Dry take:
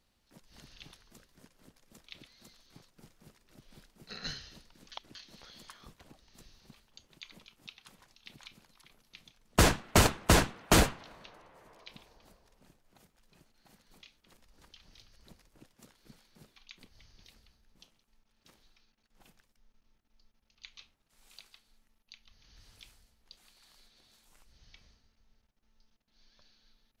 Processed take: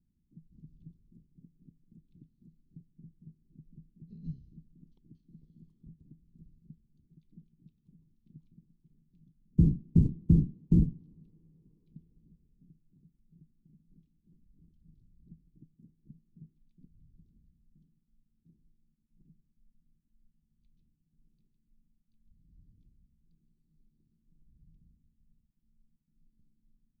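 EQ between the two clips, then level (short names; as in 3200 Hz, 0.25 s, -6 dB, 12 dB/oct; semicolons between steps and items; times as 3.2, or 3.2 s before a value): inverse Chebyshev low-pass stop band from 590 Hz, stop band 40 dB; bell 160 Hz +13 dB 0.33 oct; 0.0 dB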